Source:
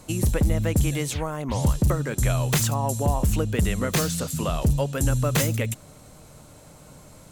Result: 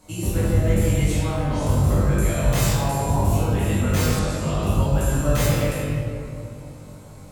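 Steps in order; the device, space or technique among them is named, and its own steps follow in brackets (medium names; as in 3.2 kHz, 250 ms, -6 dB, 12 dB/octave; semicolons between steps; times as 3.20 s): tunnel (flutter echo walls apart 3.5 m, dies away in 0.25 s; reverberation RT60 2.7 s, pre-delay 8 ms, DRR -9.5 dB); 4.19–4.63 s: low-pass 8 kHz 12 dB/octave; trim -9 dB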